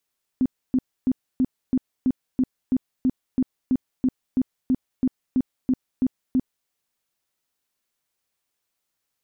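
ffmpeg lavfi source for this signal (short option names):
-f lavfi -i "aevalsrc='0.158*sin(2*PI*257*mod(t,0.33))*lt(mod(t,0.33),12/257)':d=6.27:s=44100"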